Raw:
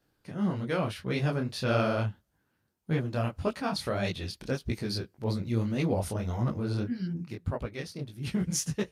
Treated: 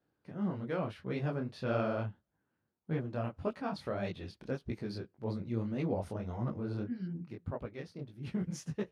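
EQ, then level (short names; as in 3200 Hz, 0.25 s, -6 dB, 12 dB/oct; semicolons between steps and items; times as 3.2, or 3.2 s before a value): HPF 130 Hz 6 dB/oct; LPF 1300 Hz 6 dB/oct; -4.0 dB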